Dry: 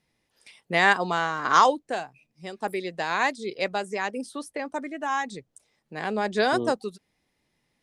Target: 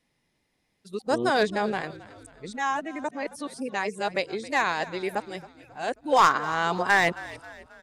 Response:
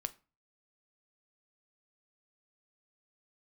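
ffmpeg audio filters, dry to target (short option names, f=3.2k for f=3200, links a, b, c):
-filter_complex "[0:a]areverse,aresample=32000,aresample=44100,aeval=exprs='clip(val(0),-1,0.237)':c=same,asplit=5[a][b][c][d][e];[b]adelay=269,afreqshift=-54,volume=-18dB[f];[c]adelay=538,afreqshift=-108,volume=-24.2dB[g];[d]adelay=807,afreqshift=-162,volume=-30.4dB[h];[e]adelay=1076,afreqshift=-216,volume=-36.6dB[i];[a][f][g][h][i]amix=inputs=5:normalize=0"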